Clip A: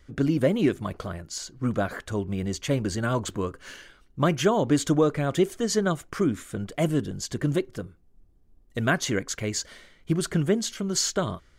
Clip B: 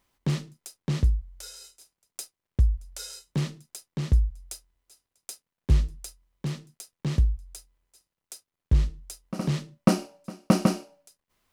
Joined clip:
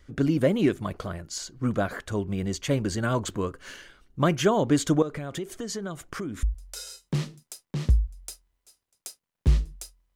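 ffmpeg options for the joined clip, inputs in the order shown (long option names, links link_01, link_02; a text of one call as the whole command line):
ffmpeg -i cue0.wav -i cue1.wav -filter_complex "[0:a]asettb=1/sr,asplit=3[link_01][link_02][link_03];[link_01]atrim=end=5.024[link_04];[link_02]atrim=start=5.02:end=6.43,asetpts=PTS-STARTPTS,afade=type=in:duration=0.004:curve=qsin,afade=type=out:start_time=1.406:duration=0.004:curve=qsin,acompressor=threshold=-30dB:ratio=5:attack=3.2:release=140:knee=1:detection=peak[link_05];[link_03]atrim=start=6.426[link_06];[link_04][link_05]acrossfade=duration=0.004:curve1=hsin:curve2=qsin[link_07];[link_07][link_06]acrossfade=duration=0.004:curve1=qsin:curve2=hsin,apad=whole_dur=10.15,atrim=end=10.15,atrim=end=6.432[link_08];[1:a]atrim=start=2.658:end=6.38[link_09];[link_08][link_09]acrossfade=duration=0.004:curve1=hsin:curve2=hsin" out.wav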